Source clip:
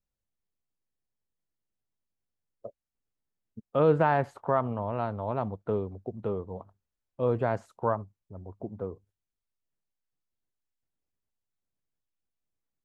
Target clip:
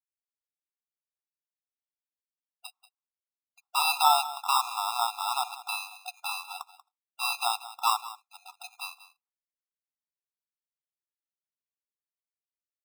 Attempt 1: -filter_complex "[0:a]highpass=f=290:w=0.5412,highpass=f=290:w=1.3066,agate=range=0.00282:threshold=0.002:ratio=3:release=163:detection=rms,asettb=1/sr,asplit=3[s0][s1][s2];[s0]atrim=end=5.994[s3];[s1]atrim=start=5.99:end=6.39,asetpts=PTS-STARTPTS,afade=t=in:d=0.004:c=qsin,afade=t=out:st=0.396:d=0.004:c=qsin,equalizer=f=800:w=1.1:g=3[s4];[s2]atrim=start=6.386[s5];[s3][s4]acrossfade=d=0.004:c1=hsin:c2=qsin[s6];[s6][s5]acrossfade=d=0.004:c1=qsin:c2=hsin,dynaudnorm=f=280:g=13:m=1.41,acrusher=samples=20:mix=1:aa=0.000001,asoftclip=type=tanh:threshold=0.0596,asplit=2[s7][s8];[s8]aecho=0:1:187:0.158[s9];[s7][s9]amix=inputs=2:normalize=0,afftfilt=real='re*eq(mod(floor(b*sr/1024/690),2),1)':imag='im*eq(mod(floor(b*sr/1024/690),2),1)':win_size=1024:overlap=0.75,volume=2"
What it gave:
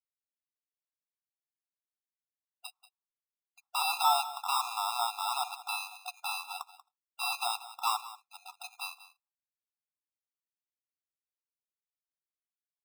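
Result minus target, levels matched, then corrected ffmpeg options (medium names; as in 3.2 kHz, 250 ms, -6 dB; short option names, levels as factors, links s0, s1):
saturation: distortion +9 dB
-filter_complex "[0:a]highpass=f=290:w=0.5412,highpass=f=290:w=1.3066,agate=range=0.00282:threshold=0.002:ratio=3:release=163:detection=rms,asettb=1/sr,asplit=3[s0][s1][s2];[s0]atrim=end=5.994[s3];[s1]atrim=start=5.99:end=6.39,asetpts=PTS-STARTPTS,afade=t=in:d=0.004:c=qsin,afade=t=out:st=0.396:d=0.004:c=qsin,equalizer=f=800:w=1.1:g=3[s4];[s2]atrim=start=6.386[s5];[s3][s4]acrossfade=d=0.004:c1=hsin:c2=qsin[s6];[s6][s5]acrossfade=d=0.004:c1=qsin:c2=hsin,dynaudnorm=f=280:g=13:m=1.41,acrusher=samples=20:mix=1:aa=0.000001,asoftclip=type=tanh:threshold=0.168,asplit=2[s7][s8];[s8]aecho=0:1:187:0.158[s9];[s7][s9]amix=inputs=2:normalize=0,afftfilt=real='re*eq(mod(floor(b*sr/1024/690),2),1)':imag='im*eq(mod(floor(b*sr/1024/690),2),1)':win_size=1024:overlap=0.75,volume=2"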